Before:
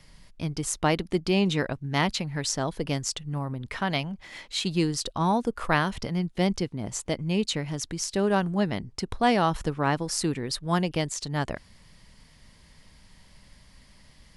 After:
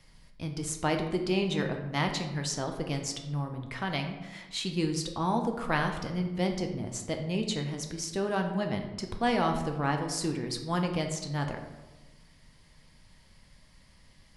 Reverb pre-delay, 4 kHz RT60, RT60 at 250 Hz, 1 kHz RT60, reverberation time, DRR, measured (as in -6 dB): 5 ms, 0.65 s, 1.3 s, 1.1 s, 1.2 s, 3.5 dB